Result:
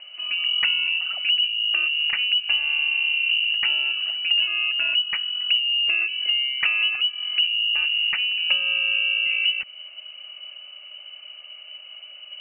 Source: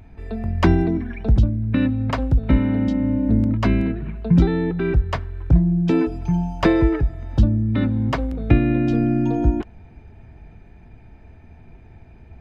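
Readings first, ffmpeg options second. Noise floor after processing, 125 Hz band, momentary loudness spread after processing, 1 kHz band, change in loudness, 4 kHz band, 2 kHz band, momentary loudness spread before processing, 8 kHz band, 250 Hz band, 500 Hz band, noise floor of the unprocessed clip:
-43 dBFS, under -40 dB, 19 LU, -13.0 dB, 0.0 dB, +24.5 dB, +12.5 dB, 7 LU, n/a, under -40 dB, under -25 dB, -46 dBFS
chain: -filter_complex "[0:a]lowpass=f=2.6k:t=q:w=0.5098,lowpass=f=2.6k:t=q:w=0.6013,lowpass=f=2.6k:t=q:w=0.9,lowpass=f=2.6k:t=q:w=2.563,afreqshift=-3000,acrossover=split=400|1400[a][b][c];[a]acompressor=threshold=-56dB:ratio=4[d];[b]acompressor=threshold=-51dB:ratio=4[e];[c]acompressor=threshold=-23dB:ratio=4[f];[d][e][f]amix=inputs=3:normalize=0,volume=2.5dB"

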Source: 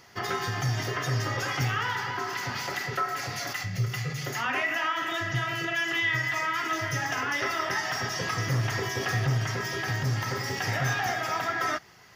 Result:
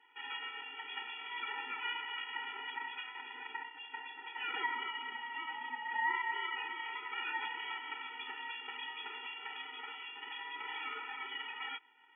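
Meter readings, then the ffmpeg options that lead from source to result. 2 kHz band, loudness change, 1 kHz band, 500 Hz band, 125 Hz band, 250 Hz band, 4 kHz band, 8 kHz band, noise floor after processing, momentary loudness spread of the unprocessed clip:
-10.5 dB, -11.5 dB, -10.0 dB, -23.0 dB, under -40 dB, -23.5 dB, -8.0 dB, under -40 dB, -53 dBFS, 5 LU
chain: -af "highpass=f=740:p=1,aeval=exprs='val(0)*sin(2*PI*490*n/s)':c=same,lowpass=f=2.9k:t=q:w=0.5098,lowpass=f=2.9k:t=q:w=0.6013,lowpass=f=2.9k:t=q:w=0.9,lowpass=f=2.9k:t=q:w=2.563,afreqshift=-3400,afftfilt=real='re*eq(mod(floor(b*sr/1024/250),2),1)':imag='im*eq(mod(floor(b*sr/1024/250),2),1)':win_size=1024:overlap=0.75,volume=-2dB"

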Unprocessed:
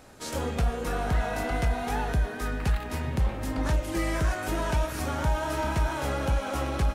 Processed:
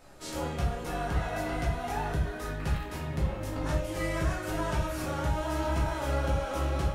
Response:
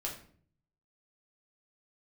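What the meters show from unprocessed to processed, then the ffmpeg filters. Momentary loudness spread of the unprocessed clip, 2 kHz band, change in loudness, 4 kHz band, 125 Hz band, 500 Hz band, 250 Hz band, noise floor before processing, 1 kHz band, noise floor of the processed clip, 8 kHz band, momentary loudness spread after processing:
3 LU, -3.5 dB, -3.0 dB, -3.0 dB, -2.5 dB, -1.5 dB, -2.5 dB, -36 dBFS, -2.5 dB, -39 dBFS, -4.0 dB, 4 LU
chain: -filter_complex "[1:a]atrim=start_sample=2205,afade=t=out:st=0.16:d=0.01,atrim=end_sample=7497[a];[0:a][a]afir=irnorm=-1:irlink=0,volume=-3.5dB"

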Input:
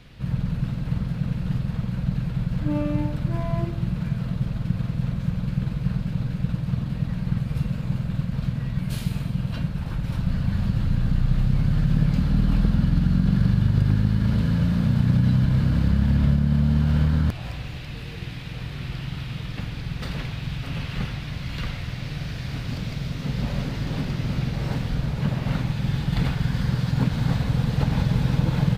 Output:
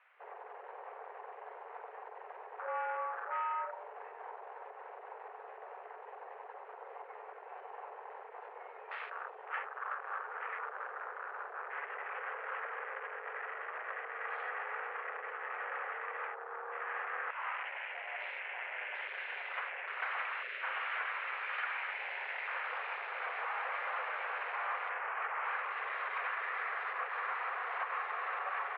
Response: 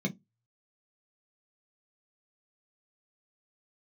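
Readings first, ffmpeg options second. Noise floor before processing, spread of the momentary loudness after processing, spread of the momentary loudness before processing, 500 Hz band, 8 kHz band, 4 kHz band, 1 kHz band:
-34 dBFS, 13 LU, 11 LU, -8.0 dB, n/a, -14.5 dB, +3.0 dB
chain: -af "aemphasis=mode=production:type=bsi,afwtdn=0.01,equalizer=f=1k:t=o:w=1.6:g=14.5,acompressor=threshold=-28dB:ratio=6,asoftclip=type=tanh:threshold=-27dB,crystalizer=i=5:c=0,highpass=f=290:t=q:w=0.5412,highpass=f=290:t=q:w=1.307,lowpass=f=2.1k:t=q:w=0.5176,lowpass=f=2.1k:t=q:w=0.7071,lowpass=f=2.1k:t=q:w=1.932,afreqshift=250,volume=-4dB"

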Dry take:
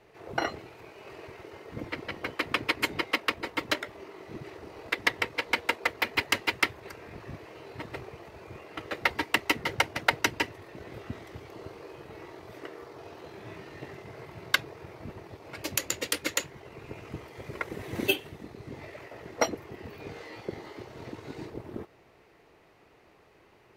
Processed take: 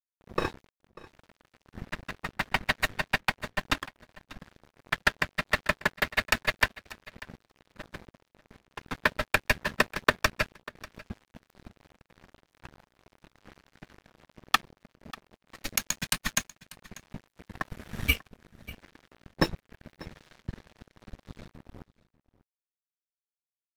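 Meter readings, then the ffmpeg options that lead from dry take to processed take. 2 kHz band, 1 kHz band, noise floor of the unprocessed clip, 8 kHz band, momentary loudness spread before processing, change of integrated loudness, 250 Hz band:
+1.0 dB, +0.5 dB, -60 dBFS, +0.5 dB, 18 LU, +2.0 dB, -1.0 dB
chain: -af "afreqshift=-320,aeval=exprs='sgn(val(0))*max(abs(val(0))-0.01,0)':c=same,aecho=1:1:592:0.1,volume=2dB"

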